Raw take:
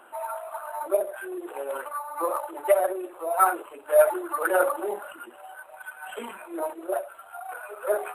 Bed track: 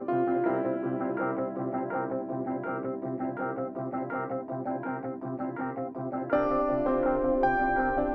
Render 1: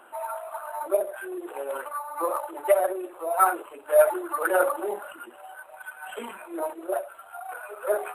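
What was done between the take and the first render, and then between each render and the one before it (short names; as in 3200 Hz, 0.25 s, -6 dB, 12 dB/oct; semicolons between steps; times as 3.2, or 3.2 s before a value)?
nothing audible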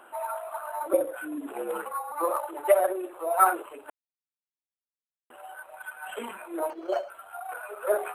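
0.93–2.12 frequency shift -65 Hz; 3.9–5.3 mute; 6.7–7.1 decimation joined by straight lines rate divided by 6×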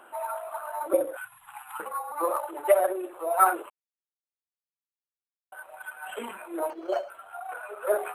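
1.17–1.8 Chebyshev band-stop 160–810 Hz, order 5; 3.7–5.52 mute; 7.16–7.84 high shelf 11000 Hz -11.5 dB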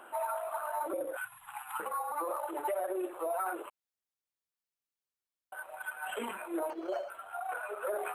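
compressor 4:1, threshold -27 dBFS, peak gain reduction 11 dB; limiter -26.5 dBFS, peak gain reduction 9.5 dB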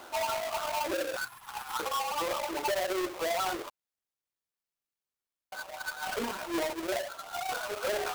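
half-waves squared off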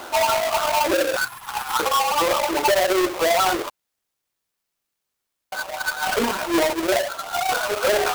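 gain +12 dB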